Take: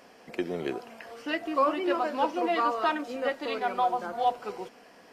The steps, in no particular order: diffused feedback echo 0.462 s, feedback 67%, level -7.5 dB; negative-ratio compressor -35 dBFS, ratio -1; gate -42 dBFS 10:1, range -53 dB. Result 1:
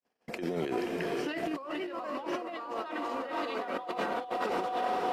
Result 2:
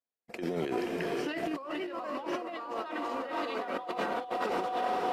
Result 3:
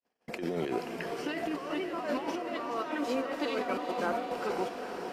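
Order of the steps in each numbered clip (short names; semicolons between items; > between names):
diffused feedback echo > negative-ratio compressor > gate; diffused feedback echo > gate > negative-ratio compressor; negative-ratio compressor > diffused feedback echo > gate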